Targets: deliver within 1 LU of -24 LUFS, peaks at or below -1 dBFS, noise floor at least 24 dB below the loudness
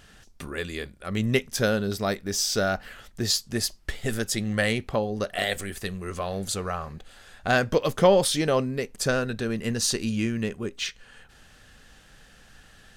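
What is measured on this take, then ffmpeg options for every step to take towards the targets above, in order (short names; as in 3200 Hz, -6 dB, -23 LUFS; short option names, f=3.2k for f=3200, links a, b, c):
loudness -26.5 LUFS; peak -6.5 dBFS; loudness target -24.0 LUFS
-> -af "volume=2.5dB"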